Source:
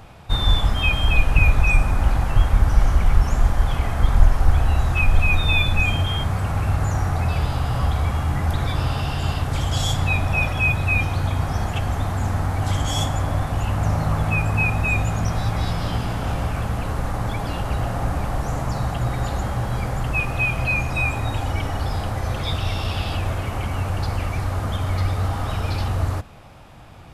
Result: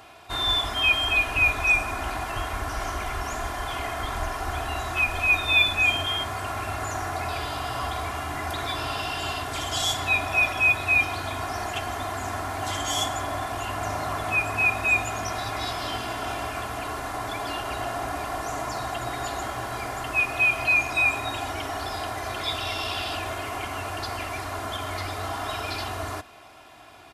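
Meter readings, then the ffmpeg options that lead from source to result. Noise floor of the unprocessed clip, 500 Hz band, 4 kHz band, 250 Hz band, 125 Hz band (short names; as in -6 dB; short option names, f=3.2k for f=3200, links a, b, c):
-28 dBFS, -1.5 dB, +2.0 dB, -8.5 dB, -16.0 dB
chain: -af "highpass=f=610:p=1,aecho=1:1:2.9:0.66"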